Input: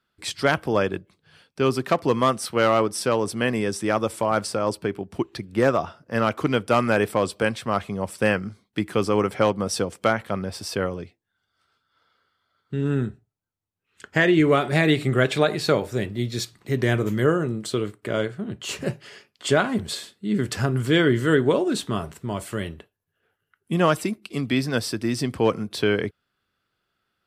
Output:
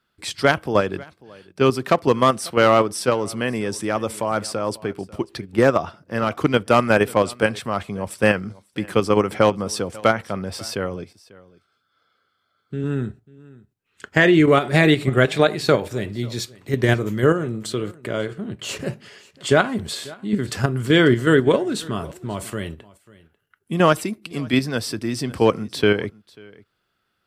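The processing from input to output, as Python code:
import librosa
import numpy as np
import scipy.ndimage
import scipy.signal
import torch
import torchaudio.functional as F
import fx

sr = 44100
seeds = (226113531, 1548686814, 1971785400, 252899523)

p1 = fx.notch_comb(x, sr, f0_hz=940.0, at=(10.96, 12.84))
p2 = p1 + 10.0 ** (-22.0 / 20.0) * np.pad(p1, (int(543 * sr / 1000.0), 0))[:len(p1)]
p3 = fx.level_steps(p2, sr, step_db=20)
p4 = p2 + F.gain(torch.from_numpy(p3), 2.5).numpy()
y = F.gain(torch.from_numpy(p4), -2.0).numpy()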